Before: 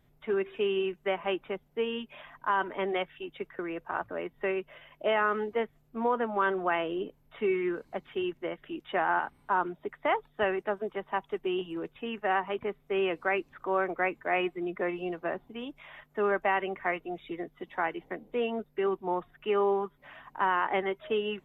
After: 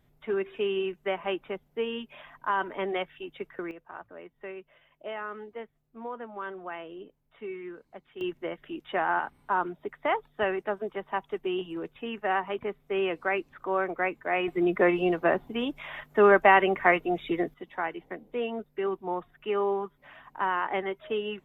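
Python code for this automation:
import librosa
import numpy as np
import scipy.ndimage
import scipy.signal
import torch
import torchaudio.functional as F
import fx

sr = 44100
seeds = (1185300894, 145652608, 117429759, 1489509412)

y = fx.gain(x, sr, db=fx.steps((0.0, 0.0), (3.71, -10.0), (8.21, 0.5), (14.48, 9.0), (17.54, -1.0)))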